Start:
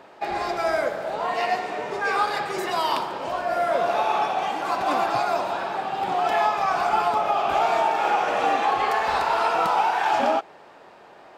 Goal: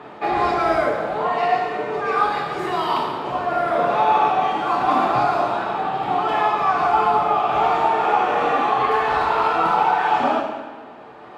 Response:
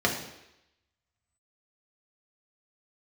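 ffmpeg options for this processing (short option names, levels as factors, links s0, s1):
-filter_complex "[1:a]atrim=start_sample=2205,asetrate=27342,aresample=44100[s0];[0:a][s0]afir=irnorm=-1:irlink=0,dynaudnorm=f=280:g=7:m=3.76,volume=0.531"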